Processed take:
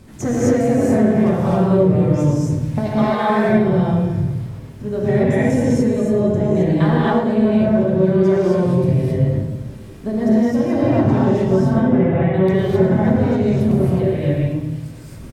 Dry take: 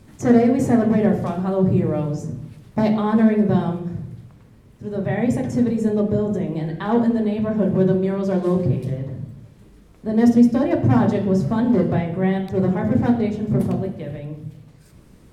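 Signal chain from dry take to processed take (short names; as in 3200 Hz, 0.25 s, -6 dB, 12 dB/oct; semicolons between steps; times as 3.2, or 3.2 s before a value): 2.87–3.3 HPF 680 Hz 12 dB/oct; compressor, threshold -24 dBFS, peak gain reduction 14.5 dB; 11.55–12.34 polynomial smoothing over 25 samples; feedback echo 0.108 s, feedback 57%, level -13 dB; non-linear reverb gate 0.29 s rising, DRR -7 dB; gain +3.5 dB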